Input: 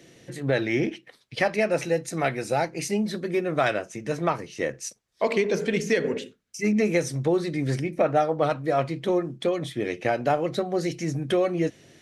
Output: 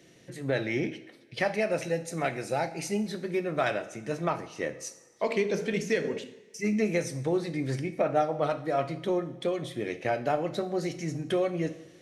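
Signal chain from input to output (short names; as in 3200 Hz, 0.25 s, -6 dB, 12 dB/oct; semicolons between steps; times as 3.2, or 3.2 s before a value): two-slope reverb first 0.67 s, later 2.5 s, from -17 dB, DRR 9.5 dB; gain -5 dB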